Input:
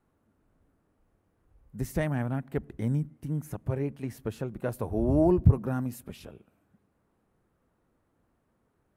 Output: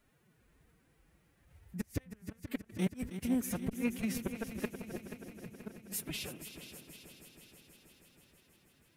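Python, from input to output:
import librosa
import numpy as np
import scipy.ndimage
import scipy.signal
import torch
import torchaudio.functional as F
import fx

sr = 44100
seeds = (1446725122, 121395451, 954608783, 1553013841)

y = fx.high_shelf_res(x, sr, hz=1500.0, db=9.0, q=1.5)
y = fx.gate_flip(y, sr, shuts_db=-20.0, range_db=-39)
y = fx.pitch_keep_formants(y, sr, semitones=9.0)
y = fx.echo_heads(y, sr, ms=160, heads='second and third', feedback_pct=65, wet_db=-11.5)
y = fx.transformer_sat(y, sr, knee_hz=250.0)
y = y * librosa.db_to_amplitude(1.0)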